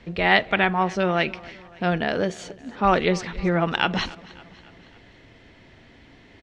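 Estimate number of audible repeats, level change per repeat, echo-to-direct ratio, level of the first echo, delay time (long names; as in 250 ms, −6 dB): 3, −5.0 dB, −19.5 dB, −21.0 dB, 279 ms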